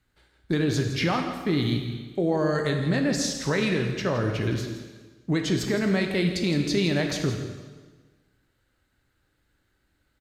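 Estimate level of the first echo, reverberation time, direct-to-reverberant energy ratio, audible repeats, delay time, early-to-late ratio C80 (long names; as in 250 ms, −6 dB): −12.5 dB, 1.4 s, 3.0 dB, 1, 165 ms, 6.0 dB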